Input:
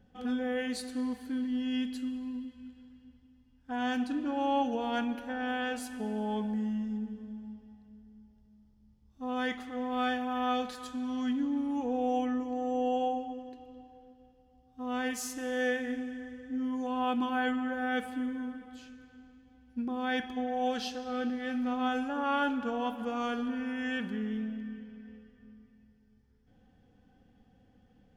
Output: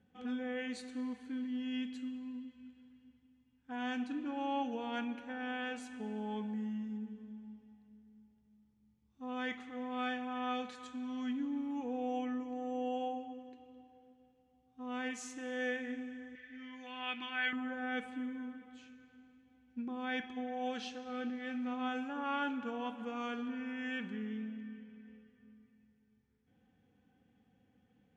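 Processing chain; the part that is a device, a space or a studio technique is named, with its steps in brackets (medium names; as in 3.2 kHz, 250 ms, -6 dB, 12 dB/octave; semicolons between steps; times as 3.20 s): 16.35–17.53 s: graphic EQ 125/250/500/1000/2000/4000/8000 Hz -10/-8/-6/-7/+11/+7/-8 dB; car door speaker (cabinet simulation 100–8000 Hz, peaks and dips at 630 Hz -6 dB, 2.3 kHz +6 dB, 4.9 kHz -7 dB); trim -6 dB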